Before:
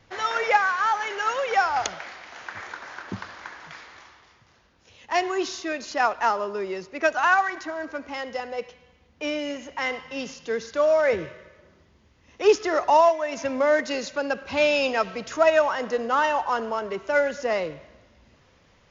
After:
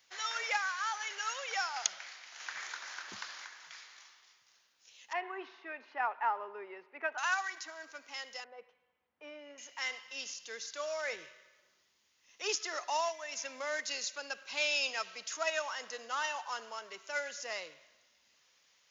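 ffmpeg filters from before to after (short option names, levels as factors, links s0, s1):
-filter_complex "[0:a]asettb=1/sr,asplit=3[s0][s1][s2];[s0]atrim=end=5.134[s3];[s1]atrim=start=5.13:end=7.18,asetpts=PTS-STARTPTS,afade=t=in:d=0.004:c=qsin,afade=t=out:st=2.046:d=0.004:c=qsin,highpass=230,equalizer=f=250:t=q:w=4:g=8,equalizer=f=410:t=q:w=4:g=6,equalizer=f=860:t=q:w=4:g=10,lowpass=f=2200:w=0.5412,lowpass=f=2200:w=1.3066[s4];[s2]atrim=start=7.176[s5];[s3][s4]acrossfade=d=0.004:c1=hsin:c2=qsin[s6];[s6][s5]acrossfade=d=0.004:c1=qsin:c2=hsin,asettb=1/sr,asplit=3[s7][s8][s9];[s7]atrim=end=8.444[s10];[s8]atrim=start=8.44:end=9.58,asetpts=PTS-STARTPTS,afade=t=in:d=0.004:c=qsin,afade=t=out:st=1.136:d=0.004:c=qsin,lowpass=1200[s11];[s9]atrim=start=9.576[s12];[s10][s11]acrossfade=d=0.004:c1=hsin:c2=qsin[s13];[s13][s12]acrossfade=d=0.004:c1=qsin:c2=hsin,asplit=3[s14][s15][s16];[s14]atrim=end=2.402[s17];[s15]atrim=start=2.398:end=3.452,asetpts=PTS-STARTPTS,volume=1.78[s18];[s16]atrim=start=3.448[s19];[s17][s18]acrossfade=d=0.004:c1=hsin:c2=hsin[s20];[s20][s19]acrossfade=d=0.004:c1=hsin:c2=hsin,aderivative,volume=1.26"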